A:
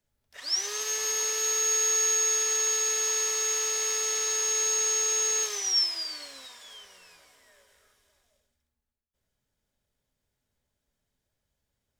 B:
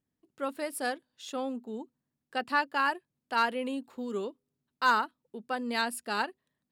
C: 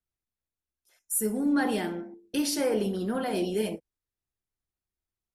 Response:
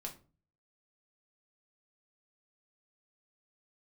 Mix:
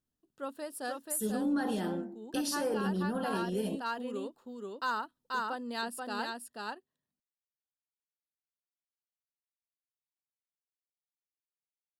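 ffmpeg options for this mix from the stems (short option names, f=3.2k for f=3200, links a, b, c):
-filter_complex "[1:a]volume=-5.5dB,asplit=2[a][b];[b]volume=-3dB[c];[2:a]equalizer=f=190:w=7.3:g=7.5,volume=-1.5dB[d];[c]aecho=0:1:484:1[e];[a][d][e]amix=inputs=3:normalize=0,equalizer=f=2.2k:t=o:w=0.26:g=-14.5,alimiter=limit=-23.5dB:level=0:latency=1:release=194"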